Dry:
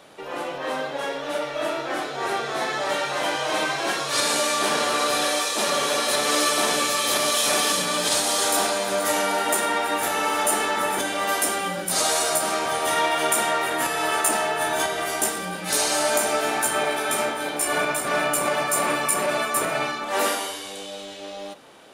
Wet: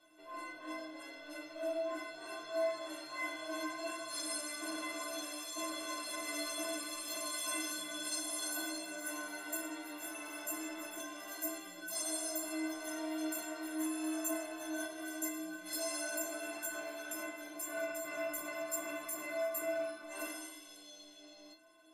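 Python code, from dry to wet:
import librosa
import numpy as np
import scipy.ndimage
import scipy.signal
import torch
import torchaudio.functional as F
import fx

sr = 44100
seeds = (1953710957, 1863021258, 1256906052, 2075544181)

y = fx.stiff_resonator(x, sr, f0_hz=310.0, decay_s=0.49, stiffness=0.03)
y = fx.dynamic_eq(y, sr, hz=4400.0, q=1.5, threshold_db=-54.0, ratio=4.0, max_db=-5)
y = F.gain(torch.from_numpy(y), 2.0).numpy()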